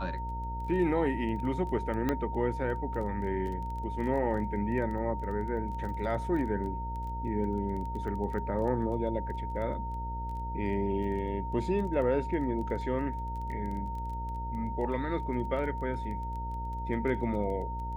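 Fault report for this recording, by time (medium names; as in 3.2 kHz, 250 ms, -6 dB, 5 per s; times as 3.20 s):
buzz 60 Hz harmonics 11 -37 dBFS
crackle 13 per s -38 dBFS
whine 920 Hz -37 dBFS
2.09 s: pop -16 dBFS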